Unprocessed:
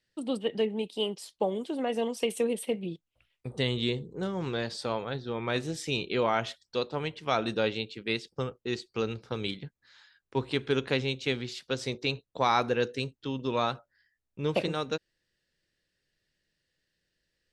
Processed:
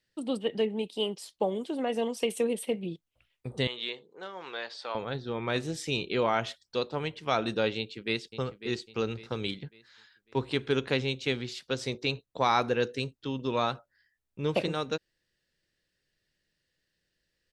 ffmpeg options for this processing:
-filter_complex "[0:a]asettb=1/sr,asplit=3[a][b][c];[a]atrim=end=3.674[d];[b]atrim=start=3.67:end=4.95,asetpts=PTS-STARTPTS,afade=t=in:d=0.004:c=qsin,afade=t=out:st=1.276:d=0.004:c=qsin,highpass=720,lowpass=4.1k[e];[c]atrim=start=4.946[f];[d][e]acrossfade=d=0.004:c1=hsin:c2=qsin[g];[g][f]acrossfade=d=0.004:c1=qsin:c2=hsin,asplit=2[h][i];[i]afade=t=in:st=7.77:d=0.01,afade=t=out:st=8.33:d=0.01,aecho=0:1:550|1100|1650|2200:0.251189|0.100475|0.0401902|0.0160761[j];[h][j]amix=inputs=2:normalize=0"

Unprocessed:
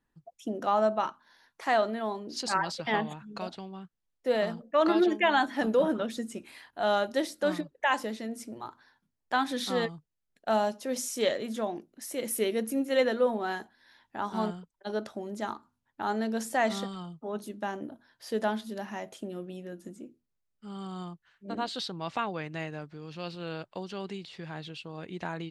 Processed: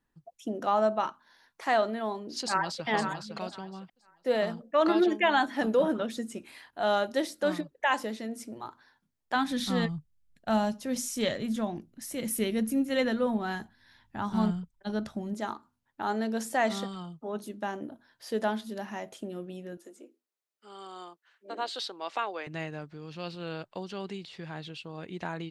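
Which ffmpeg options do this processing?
-filter_complex "[0:a]asplit=2[a][b];[b]afade=t=in:st=2.43:d=0.01,afade=t=out:st=2.87:d=0.01,aecho=0:1:510|1020|1530:0.446684|0.0893367|0.0178673[c];[a][c]amix=inputs=2:normalize=0,asplit=3[d][e][f];[d]afade=t=out:st=9.34:d=0.02[g];[e]asubboost=boost=7.5:cutoff=150,afade=t=in:st=9.34:d=0.02,afade=t=out:st=15.33:d=0.02[h];[f]afade=t=in:st=15.33:d=0.02[i];[g][h][i]amix=inputs=3:normalize=0,asettb=1/sr,asplit=3[j][k][l];[j]atrim=end=19.774[m];[k]atrim=start=19.77:end=22.47,asetpts=PTS-STARTPTS,afade=t=in:d=0.004:c=qsin,afade=t=out:st=2.696:d=0.004:c=qsin,highpass=f=350:w=0.5412,highpass=f=350:w=1.3066[n];[l]atrim=start=22.466[o];[m][n]acrossfade=d=0.004:c1=hsin:c2=qsin[p];[p][o]acrossfade=d=0.004:c1=qsin:c2=hsin"

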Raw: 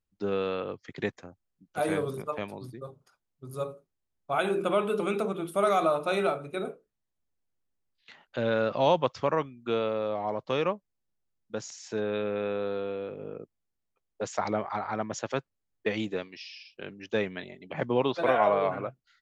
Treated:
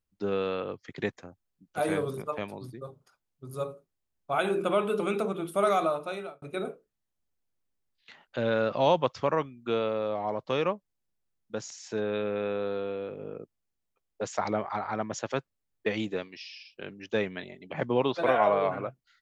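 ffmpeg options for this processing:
-filter_complex "[0:a]asplit=2[a][b];[a]atrim=end=6.42,asetpts=PTS-STARTPTS,afade=t=out:st=5.71:d=0.71[c];[b]atrim=start=6.42,asetpts=PTS-STARTPTS,afade=t=in:d=0.004:c=hsin[d];[c][d]concat=n=2:v=0:a=1"

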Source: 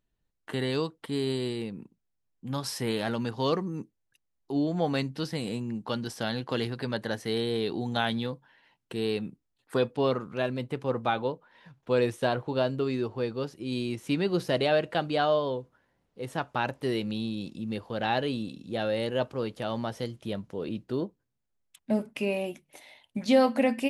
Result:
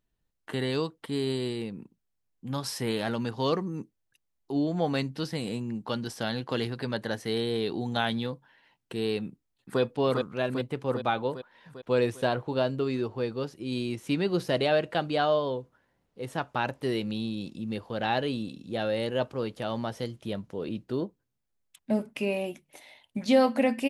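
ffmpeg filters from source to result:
-filter_complex "[0:a]asplit=2[a][b];[b]afade=t=in:st=9.27:d=0.01,afade=t=out:st=9.81:d=0.01,aecho=0:1:400|800|1200|1600|2000|2400|2800|3200|3600|4000:0.707946|0.460165|0.299107|0.19442|0.126373|0.0821423|0.0533925|0.0347051|0.0225583|0.0146629[c];[a][c]amix=inputs=2:normalize=0"

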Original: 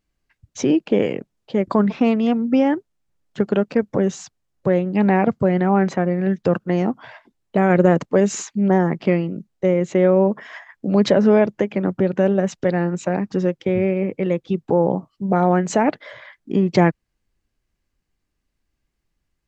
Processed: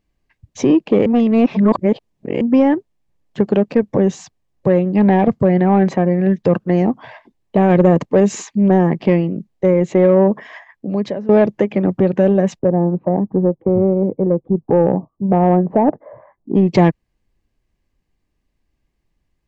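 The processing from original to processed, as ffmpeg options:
-filter_complex "[0:a]asplit=3[a][b][c];[a]afade=t=out:st=12.58:d=0.02[d];[b]lowpass=f=1k:w=0.5412,lowpass=f=1k:w=1.3066,afade=t=in:st=12.58:d=0.02,afade=t=out:st=16.55:d=0.02[e];[c]afade=t=in:st=16.55:d=0.02[f];[d][e][f]amix=inputs=3:normalize=0,asplit=4[g][h][i][j];[g]atrim=end=1.062[k];[h]atrim=start=1.058:end=2.412,asetpts=PTS-STARTPTS,areverse[l];[i]atrim=start=2.408:end=11.29,asetpts=PTS-STARTPTS,afade=t=out:st=7.902:d=0.98:silence=0.0749894[m];[j]atrim=start=11.29,asetpts=PTS-STARTPTS,afade=t=in:d=0.004:c=hsin:silence=0.0749894[n];[k][l]acrossfade=d=0.004:c1=hsin:c2=hsin[o];[m][n]concat=n=2:v=0:a=1[p];[o][p]acrossfade=d=0.004:c1=hsin:c2=hsin,highshelf=f=3.4k:g=-8.5,acontrast=69,equalizer=f=1.4k:t=o:w=0.22:g=-11,volume=-1dB"

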